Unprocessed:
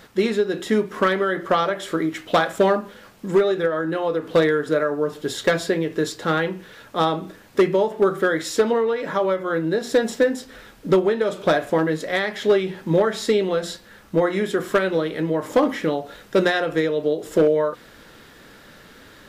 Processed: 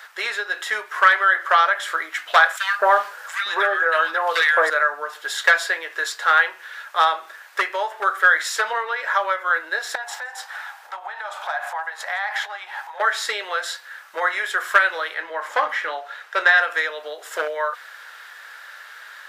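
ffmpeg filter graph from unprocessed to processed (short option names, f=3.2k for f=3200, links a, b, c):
-filter_complex "[0:a]asettb=1/sr,asplit=3[a][b][c];[a]atrim=end=2.574[d];[b]atrim=start=2.57:end=4.7,asetpts=PTS-STARTPTS,afade=t=in:d=0.004:c=qsin,afade=t=out:st=2.126:d=0.004:c=qsin,acontrast=42,acrossover=split=1600[e][f];[e]adelay=220[g];[g][f]amix=inputs=2:normalize=0,atrim=end_sample=93933[h];[c]atrim=start=4.696[i];[d][h]acrossfade=d=0.004:c1=hsin:c2=qsin[j];[j][i]acrossfade=d=0.004:c1=qsin:c2=hsin,asettb=1/sr,asplit=3[k][l][m];[k]atrim=end=9.954[n];[l]atrim=start=9.95:end=13,asetpts=PTS-STARTPTS,afade=t=in:d=0.004:c=qsin,afade=t=out:st=3.046:d=0.004:c=qsin,acompressor=threshold=-28dB:ratio=16:attack=3.2:release=140:knee=1:detection=peak,highpass=f=800:t=q:w=5.6,aecho=1:1:168:0.0631,atrim=end_sample=134505[o];[m]atrim=start=12.996[p];[n][o]acrossfade=d=0.004:c1=hsin:c2=qsin[q];[q][p]acrossfade=d=0.004:c1=qsin:c2=hsin,asettb=1/sr,asplit=3[r][s][t];[r]atrim=end=15.144[u];[s]atrim=start=15.14:end=16.58,asetpts=PTS-STARTPTS,afade=t=in:d=0.004:c=qsin,afade=t=out:st=1.436:d=0.004:c=qsin,lowpass=f=3.6k:p=1,asplit=2[v][w];[w]adelay=31,volume=-14dB[x];[v][x]amix=inputs=2:normalize=0,atrim=end_sample=63504[y];[t]atrim=start=16.576[z];[u][y]acrossfade=d=0.004:c1=hsin:c2=qsin[aa];[aa][z]acrossfade=d=0.004:c1=qsin:c2=hsin,highpass=f=740:w=0.5412,highpass=f=740:w=1.3066,equalizer=f=1.6k:t=o:w=0.76:g=9,volume=2.5dB"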